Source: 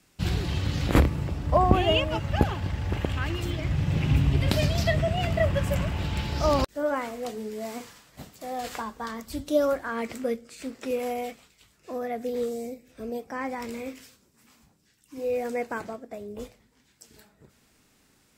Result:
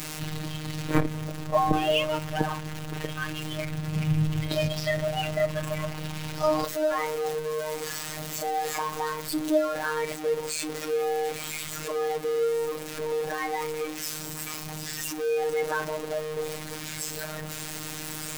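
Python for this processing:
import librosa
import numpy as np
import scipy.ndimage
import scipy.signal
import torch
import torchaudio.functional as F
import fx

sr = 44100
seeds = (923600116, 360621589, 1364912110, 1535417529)

y = x + 0.5 * 10.0 ** (-19.5 / 20.0) * np.sign(x)
y = fx.robotise(y, sr, hz=154.0)
y = fx.noise_reduce_blind(y, sr, reduce_db=7)
y = y * librosa.db_to_amplitude(-2.0)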